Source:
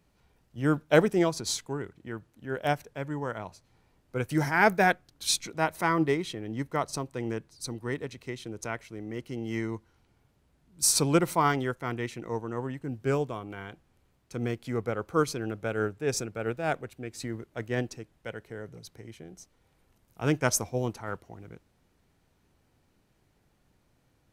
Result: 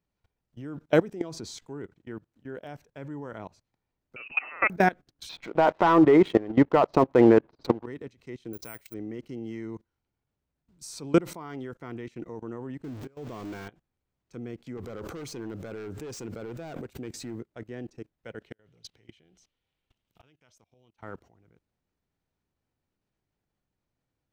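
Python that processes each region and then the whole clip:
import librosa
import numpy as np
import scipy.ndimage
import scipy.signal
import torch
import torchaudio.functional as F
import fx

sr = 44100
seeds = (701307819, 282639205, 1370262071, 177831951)

y = fx.chain(x, sr, fx.hum_notches(base_hz=50, count=8),
    fx.freq_invert(carrier_hz=2800),
    fx.band_squash(depth_pct=70), at=(4.16, 4.7))
y = fx.chain(y, sr, fx.lowpass(hz=3600.0, slope=24),
    fx.peak_eq(hz=780.0, db=14.5, octaves=2.6),
    fx.leveller(passes=2), at=(5.29, 7.86))
y = fx.chain(y, sr, fx.high_shelf(hz=3300.0, db=10.5),
    fx.resample_bad(factor=4, down='filtered', up='zero_stuff'), at=(8.53, 8.94))
y = fx.chain(y, sr, fx.zero_step(step_db=-32.0),
    fx.over_compress(threshold_db=-36.0, ratio=-1.0), at=(12.84, 13.68))
y = fx.chain(y, sr, fx.high_shelf(hz=6200.0, db=8.0),
    fx.clip_hard(threshold_db=-29.5),
    fx.pre_swell(db_per_s=33.0), at=(14.77, 17.4))
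y = fx.chain(y, sr, fx.gate_flip(shuts_db=-27.0, range_db=-28),
    fx.peak_eq(hz=3100.0, db=13.5, octaves=1.0), at=(18.42, 21.03))
y = fx.peak_eq(y, sr, hz=11000.0, db=-14.5, octaves=0.4)
y = fx.level_steps(y, sr, step_db=21)
y = fx.dynamic_eq(y, sr, hz=290.0, q=0.82, threshold_db=-50.0, ratio=4.0, max_db=7)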